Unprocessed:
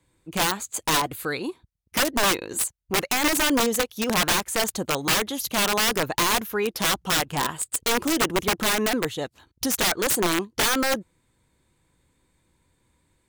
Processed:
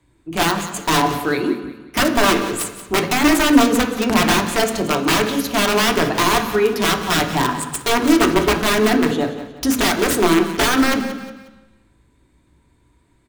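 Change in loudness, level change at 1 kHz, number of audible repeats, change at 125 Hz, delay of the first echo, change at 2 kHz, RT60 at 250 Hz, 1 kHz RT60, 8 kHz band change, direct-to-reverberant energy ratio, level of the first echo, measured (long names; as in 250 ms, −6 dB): +6.0 dB, +7.0 dB, 3, +8.5 dB, 180 ms, +5.5 dB, 1.2 s, 1.2 s, +1.0 dB, 2.5 dB, −13.5 dB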